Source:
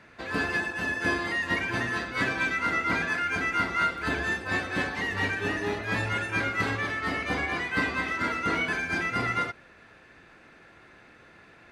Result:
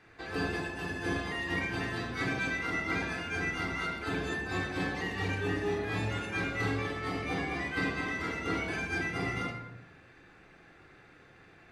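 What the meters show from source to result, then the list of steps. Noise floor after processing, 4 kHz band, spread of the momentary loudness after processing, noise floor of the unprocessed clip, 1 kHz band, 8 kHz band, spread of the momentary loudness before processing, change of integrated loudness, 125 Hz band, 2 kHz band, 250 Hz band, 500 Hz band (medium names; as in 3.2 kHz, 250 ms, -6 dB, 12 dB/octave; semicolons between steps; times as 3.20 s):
-58 dBFS, -4.5 dB, 3 LU, -54 dBFS, -7.5 dB, -4.5 dB, 3 LU, -5.5 dB, -0.5 dB, -7.0 dB, -2.0 dB, -2.0 dB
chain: simulated room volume 2600 m³, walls furnished, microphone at 3.7 m; dynamic bell 1.6 kHz, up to -5 dB, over -35 dBFS, Q 1.7; trim -7 dB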